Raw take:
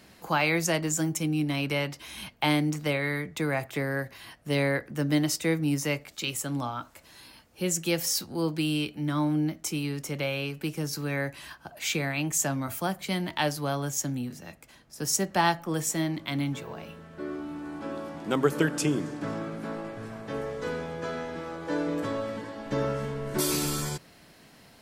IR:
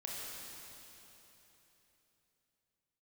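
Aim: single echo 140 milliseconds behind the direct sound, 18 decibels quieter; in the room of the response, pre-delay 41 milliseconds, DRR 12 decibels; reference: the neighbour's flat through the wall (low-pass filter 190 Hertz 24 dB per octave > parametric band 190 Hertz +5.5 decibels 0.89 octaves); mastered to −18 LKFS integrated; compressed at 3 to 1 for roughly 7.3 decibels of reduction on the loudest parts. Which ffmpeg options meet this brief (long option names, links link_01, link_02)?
-filter_complex "[0:a]acompressor=threshold=-28dB:ratio=3,aecho=1:1:140:0.126,asplit=2[link_01][link_02];[1:a]atrim=start_sample=2205,adelay=41[link_03];[link_02][link_03]afir=irnorm=-1:irlink=0,volume=-12.5dB[link_04];[link_01][link_04]amix=inputs=2:normalize=0,lowpass=frequency=190:width=0.5412,lowpass=frequency=190:width=1.3066,equalizer=frequency=190:width_type=o:width=0.89:gain=5.5,volume=19dB"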